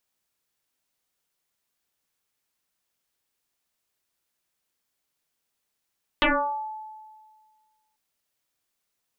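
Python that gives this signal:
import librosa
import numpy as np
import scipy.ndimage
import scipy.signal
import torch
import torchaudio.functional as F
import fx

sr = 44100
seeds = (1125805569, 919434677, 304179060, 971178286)

y = fx.fm2(sr, length_s=1.74, level_db=-16.0, carrier_hz=866.0, ratio=0.34, index=9.5, index_s=0.58, decay_s=1.75, shape='exponential')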